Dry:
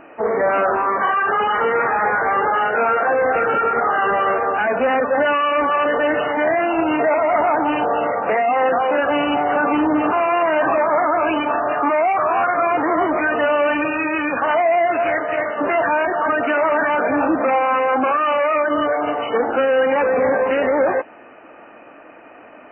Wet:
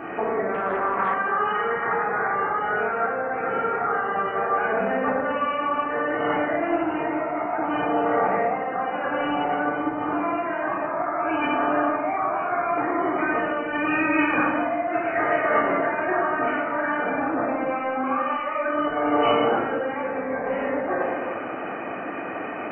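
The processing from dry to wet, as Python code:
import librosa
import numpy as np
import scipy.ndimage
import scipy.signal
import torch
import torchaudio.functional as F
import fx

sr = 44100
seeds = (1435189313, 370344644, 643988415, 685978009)

y = scipy.signal.sosfilt(scipy.signal.butter(2, 81.0, 'highpass', fs=sr, output='sos'), x)
y = fx.notch(y, sr, hz=2700.0, q=8.5)
y = fx.over_compress(y, sr, threshold_db=-27.0, ratio=-1.0)
y = fx.room_shoebox(y, sr, seeds[0], volume_m3=1400.0, walls='mixed', distance_m=3.6)
y = fx.doppler_dist(y, sr, depth_ms=0.27, at=(0.54, 1.14))
y = y * 10.0 ** (-4.0 / 20.0)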